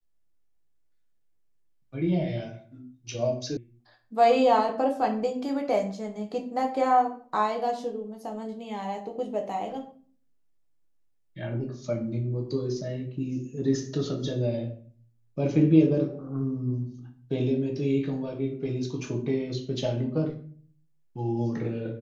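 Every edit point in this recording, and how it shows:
0:03.57: cut off before it has died away

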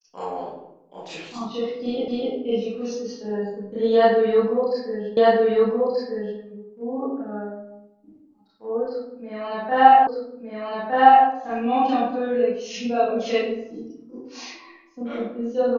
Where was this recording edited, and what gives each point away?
0:02.08: the same again, the last 0.25 s
0:05.17: the same again, the last 1.23 s
0:10.07: the same again, the last 1.21 s

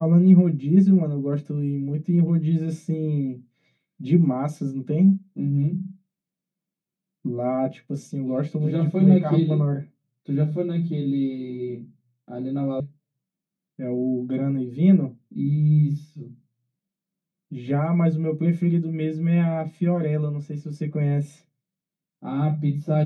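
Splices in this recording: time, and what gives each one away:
0:12.80: cut off before it has died away

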